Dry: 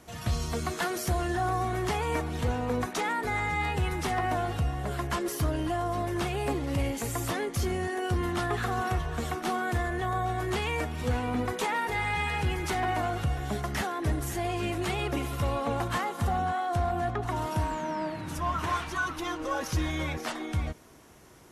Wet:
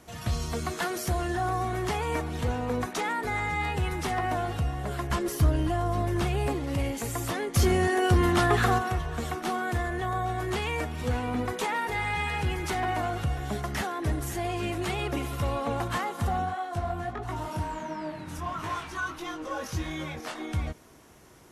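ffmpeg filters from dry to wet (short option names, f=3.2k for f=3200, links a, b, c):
-filter_complex "[0:a]asettb=1/sr,asplit=3[a][b][c];[a]atrim=end=5.104[d];[b]atrim=start=5.1:end=6.48,asetpts=PTS-STARTPTS,afade=t=in:d=0.004:c=qsin,afade=t=out:st=1.376:d=0.004:c=qsin,lowshelf=f=160:g=9[e];[c]atrim=start=6.476[f];[d][e]acrossfade=d=0.004:c1=hsin:c2=qsin[g];[g][f]acrossfade=d=0.004:c1=qsin:c2=hsin,asplit=3[h][i][j];[h]afade=t=out:st=7.54:d=0.02[k];[i]acontrast=79,afade=t=in:st=7.54:d=0.02,afade=t=out:st=8.77:d=0.02[l];[j]afade=t=in:st=8.77:d=0.02[m];[k][l][m]amix=inputs=3:normalize=0,asplit=3[n][o][p];[n]afade=t=out:st=16.45:d=0.02[q];[o]flanger=delay=18.5:depth=5.3:speed=1.5,afade=t=in:st=16.45:d=0.02,afade=t=out:st=20.37:d=0.02[r];[p]afade=t=in:st=20.37:d=0.02[s];[q][r][s]amix=inputs=3:normalize=0"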